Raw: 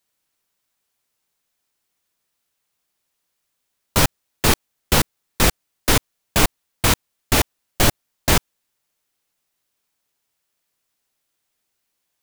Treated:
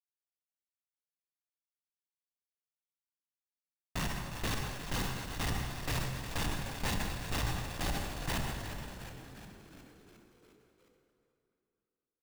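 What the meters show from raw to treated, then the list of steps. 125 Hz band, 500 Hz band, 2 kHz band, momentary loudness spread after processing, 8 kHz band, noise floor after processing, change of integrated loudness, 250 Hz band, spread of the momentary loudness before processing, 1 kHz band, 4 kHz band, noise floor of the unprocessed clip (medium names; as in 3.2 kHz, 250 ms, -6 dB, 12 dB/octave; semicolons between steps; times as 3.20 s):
-12.0 dB, -17.5 dB, -15.0 dB, 14 LU, -19.5 dB, under -85 dBFS, -16.5 dB, -14.5 dB, 4 LU, -15.0 dB, -16.5 dB, -76 dBFS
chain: peaking EQ 61 Hz +8.5 dB 0.84 oct; band-stop 940 Hz, Q 10; reverse; compression 6:1, threshold -22 dBFS, peak gain reduction 13 dB; reverse; whisper effect; boxcar filter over 4 samples; Schmitt trigger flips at -41 dBFS; comb 1.1 ms, depth 30%; on a send: frequency-shifting echo 358 ms, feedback 61%, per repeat -75 Hz, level -10 dB; on the sum: plate-style reverb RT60 2.9 s, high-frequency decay 0.75×, DRR 3.5 dB; decay stretcher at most 39 dB/s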